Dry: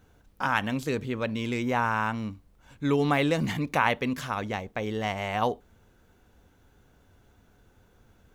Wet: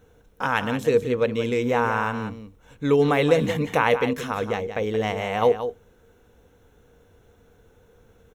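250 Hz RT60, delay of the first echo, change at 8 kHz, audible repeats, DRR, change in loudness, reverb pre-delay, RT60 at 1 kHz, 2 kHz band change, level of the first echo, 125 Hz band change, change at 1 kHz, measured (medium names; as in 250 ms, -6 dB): no reverb, 176 ms, +2.5 dB, 1, no reverb, +5.0 dB, no reverb, no reverb, +2.5 dB, -10.0 dB, +2.5 dB, +2.5 dB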